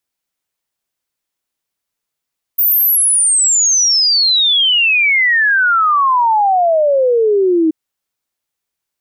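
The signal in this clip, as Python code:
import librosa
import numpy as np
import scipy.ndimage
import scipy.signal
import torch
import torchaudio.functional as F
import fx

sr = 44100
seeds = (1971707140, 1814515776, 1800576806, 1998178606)

y = fx.ess(sr, length_s=5.13, from_hz=15000.0, to_hz=310.0, level_db=-9.0)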